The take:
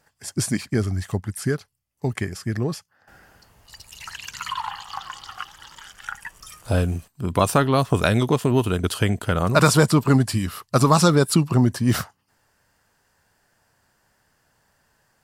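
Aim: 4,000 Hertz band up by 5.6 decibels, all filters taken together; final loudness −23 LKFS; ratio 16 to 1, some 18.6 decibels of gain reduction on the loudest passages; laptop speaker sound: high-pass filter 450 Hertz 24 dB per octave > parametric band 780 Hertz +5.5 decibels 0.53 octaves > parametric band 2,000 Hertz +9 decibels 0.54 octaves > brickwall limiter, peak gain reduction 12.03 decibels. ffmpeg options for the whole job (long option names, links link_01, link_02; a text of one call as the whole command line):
ffmpeg -i in.wav -af "equalizer=frequency=4000:width_type=o:gain=6,acompressor=threshold=-30dB:ratio=16,highpass=frequency=450:width=0.5412,highpass=frequency=450:width=1.3066,equalizer=frequency=780:width_type=o:width=0.53:gain=5.5,equalizer=frequency=2000:width_type=o:width=0.54:gain=9,volume=16dB,alimiter=limit=-10dB:level=0:latency=1" out.wav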